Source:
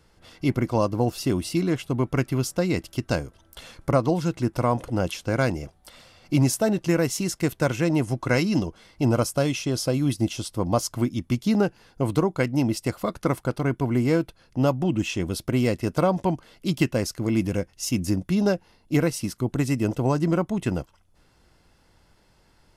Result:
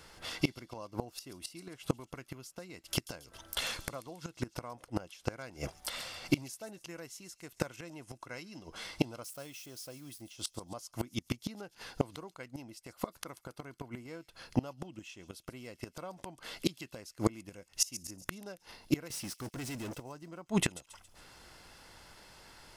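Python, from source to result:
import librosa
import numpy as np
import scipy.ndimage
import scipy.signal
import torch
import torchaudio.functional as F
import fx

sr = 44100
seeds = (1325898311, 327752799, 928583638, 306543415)

y = fx.crossing_spikes(x, sr, level_db=-27.5, at=(9.24, 10.22))
y = fx.low_shelf(y, sr, hz=470.0, db=-11.0)
y = fx.leveller(y, sr, passes=5, at=(19.1, 20.0))
y = fx.gate_flip(y, sr, shuts_db=-24.0, range_db=-28)
y = fx.echo_wet_highpass(y, sr, ms=138, feedback_pct=45, hz=4600.0, wet_db=-12.5)
y = y * librosa.db_to_amplitude(9.5)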